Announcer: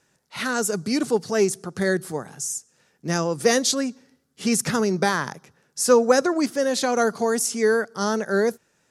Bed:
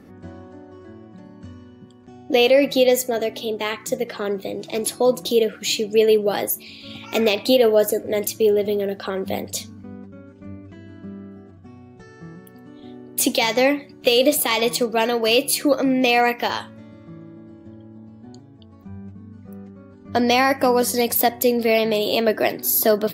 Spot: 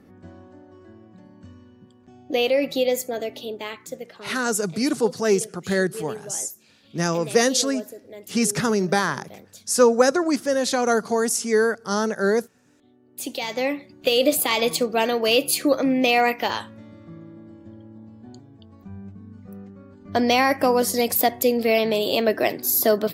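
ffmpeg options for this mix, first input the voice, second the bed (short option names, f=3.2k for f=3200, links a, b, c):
-filter_complex "[0:a]adelay=3900,volume=0.5dB[a];[1:a]volume=11.5dB,afade=t=out:st=3.37:d=0.99:silence=0.223872,afade=t=in:st=13:d=1.39:silence=0.141254[b];[a][b]amix=inputs=2:normalize=0"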